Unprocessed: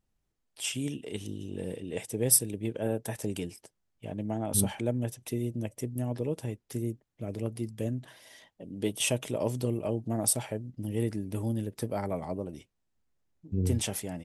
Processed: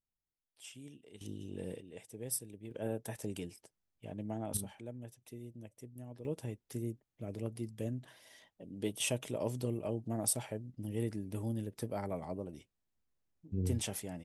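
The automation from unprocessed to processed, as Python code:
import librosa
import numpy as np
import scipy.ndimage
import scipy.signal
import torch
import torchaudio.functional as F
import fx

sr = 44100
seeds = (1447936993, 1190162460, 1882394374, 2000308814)

y = fx.gain(x, sr, db=fx.steps((0.0, -18.0), (1.21, -6.0), (1.81, -15.0), (2.71, -7.0), (4.57, -16.0), (6.25, -6.0)))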